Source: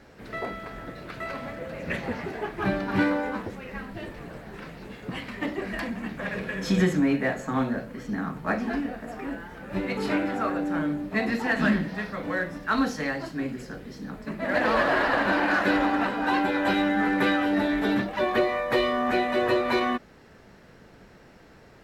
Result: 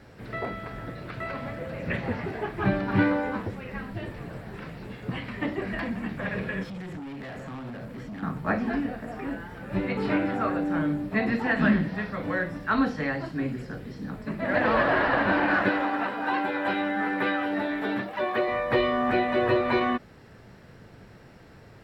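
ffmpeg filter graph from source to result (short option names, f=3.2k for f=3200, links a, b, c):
-filter_complex "[0:a]asettb=1/sr,asplit=3[a][b][c];[a]atrim=end=6.634[d];[b]atrim=start=6.63:end=8.23,asetpts=PTS-STARTPTS,afade=t=in:d=0.004:c=qsin,afade=t=out:st=1.596:d=0.004:c=qsin,acompressor=threshold=-31dB:ratio=4:attack=3.2:release=140:knee=1:detection=peak,asoftclip=type=hard:threshold=-37dB[e];[c]atrim=start=8.226[f];[d][e]acrossfade=d=0.004:c1=hsin:c2=qsin[g];[g][f]acrossfade=d=0.004:c1=qsin:c2=hsin,asettb=1/sr,asplit=3[h][i][j];[h]atrim=end=15.694[k];[i]atrim=start=15.69:end=18.48,asetpts=PTS-STARTPTS,afade=t=in:d=0.004:c=qsin,afade=t=out:st=2.786:d=0.004:c=qsin,lowpass=f=1.5k:p=1,aemphasis=mode=production:type=riaa[l];[j]atrim=start=18.476[m];[k][l]acrossfade=d=0.004:c1=hsin:c2=qsin[n];[n][m]acrossfade=d=0.004:c1=qsin:c2=hsin,acrossover=split=3800[o][p];[p]acompressor=threshold=-59dB:ratio=4:attack=1:release=60[q];[o][q]amix=inputs=2:normalize=0,equalizer=f=110:w=1.6:g=8.5,bandreject=f=6.4k:w=9.7"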